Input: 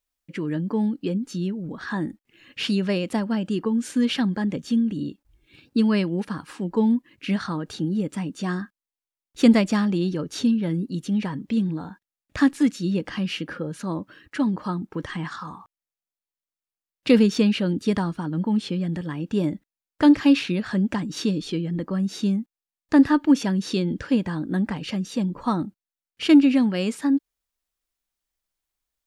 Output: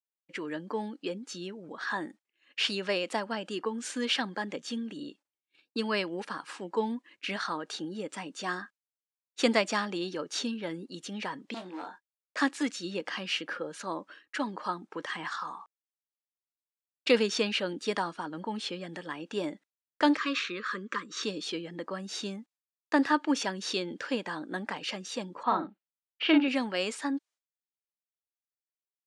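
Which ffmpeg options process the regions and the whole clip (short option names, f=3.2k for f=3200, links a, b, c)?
-filter_complex "[0:a]asettb=1/sr,asplit=3[a][b][c];[a]atrim=end=11.544[d];[b]atrim=start=11.54:end=12.41,asetpts=PTS-STARTPTS,afade=t=in:d=0.004:c=qsin,afade=t=out:st=0.866:d=0.004:c=qsin,highpass=f=240:w=0.5412,highpass=f=240:w=1.3066,asoftclip=type=hard:threshold=-29.5dB,asplit=2[e][f];[f]adelay=22,volume=-6dB[g];[e][g]amix=inputs=2:normalize=0,atrim=end_sample=38367[h];[c]atrim=start=12.406[i];[d][h]acrossfade=d=0.004:c1=hsin:c2=qsin[j];[j][i]acrossfade=d=0.004:c1=qsin:c2=hsin,asettb=1/sr,asplit=3[k][l][m];[k]atrim=end=20.174[n];[l]atrim=start=20.17:end=21.23,asetpts=PTS-STARTPTS,afade=t=in:d=0.004:c=qsin,afade=t=out:st=1.056:d=0.004:c=qsin,asuperstop=centerf=740:order=8:qfactor=1.4,highpass=220,equalizer=f=290:t=q:w=4:g=-6,equalizer=f=1.2k:t=q:w=4:g=9,equalizer=f=2.9k:t=q:w=4:g=-6,equalizer=f=4.9k:t=q:w=4:g=-7,lowpass=f=7.1k:w=0.5412,lowpass=f=7.1k:w=1.3066[o];[m]atrim=start=21.226[p];[n][o]acrossfade=d=0.004:c1=hsin:c2=qsin[q];[q][p]acrossfade=d=0.004:c1=qsin:c2=hsin,asettb=1/sr,asplit=3[r][s][t];[r]atrim=end=25.434[u];[s]atrim=start=25.43:end=26.48,asetpts=PTS-STARTPTS,afade=t=in:d=0.004:c=qsin,afade=t=out:st=1.046:d=0.004:c=qsin,lowpass=f=3.4k:w=0.5412,lowpass=f=3.4k:w=1.3066,asplit=2[v][w];[w]adelay=41,volume=-5dB[x];[v][x]amix=inputs=2:normalize=0,atrim=end_sample=46305[y];[t]atrim=start=26.476[z];[u][y]acrossfade=d=0.004:c1=hsin:c2=qsin[aa];[aa][z]acrossfade=d=0.004:c1=qsin:c2=hsin,lowpass=f=9.1k:w=0.5412,lowpass=f=9.1k:w=1.3066,agate=range=-33dB:threshold=-42dB:ratio=3:detection=peak,highpass=530"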